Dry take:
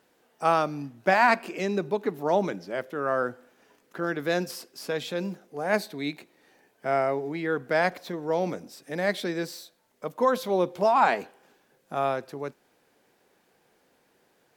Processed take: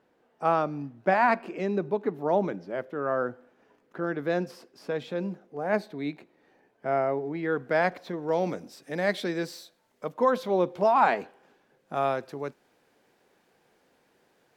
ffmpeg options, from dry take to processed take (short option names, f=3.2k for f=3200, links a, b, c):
-af "asetnsamples=n=441:p=0,asendcmd='7.43 lowpass f 2600;8.29 lowpass f 6300;10.09 lowpass f 2900;11.94 lowpass f 6900',lowpass=f=1.3k:p=1"